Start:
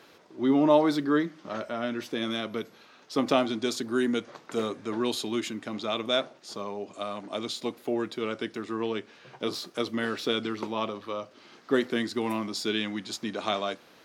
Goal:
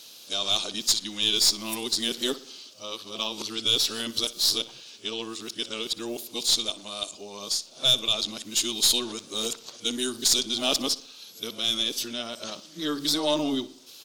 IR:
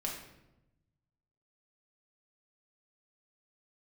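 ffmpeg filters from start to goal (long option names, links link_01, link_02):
-filter_complex "[0:a]areverse,aexciter=amount=11.9:drive=4.1:freq=2900,aeval=exprs='(tanh(2.24*val(0)+0.25)-tanh(0.25))/2.24':channel_layout=same,asplit=2[link_01][link_02];[link_02]adelay=60,lowpass=frequency=4600:poles=1,volume=-16.5dB,asplit=2[link_03][link_04];[link_04]adelay=60,lowpass=frequency=4600:poles=1,volume=0.52,asplit=2[link_05][link_06];[link_06]adelay=60,lowpass=frequency=4600:poles=1,volume=0.52,asplit=2[link_07][link_08];[link_08]adelay=60,lowpass=frequency=4600:poles=1,volume=0.52,asplit=2[link_09][link_10];[link_10]adelay=60,lowpass=frequency=4600:poles=1,volume=0.52[link_11];[link_01][link_03][link_05][link_07][link_09][link_11]amix=inputs=6:normalize=0,volume=-5dB"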